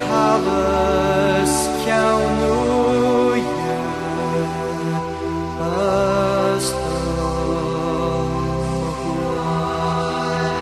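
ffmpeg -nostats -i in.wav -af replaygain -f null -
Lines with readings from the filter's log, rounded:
track_gain = +0.9 dB
track_peak = 0.487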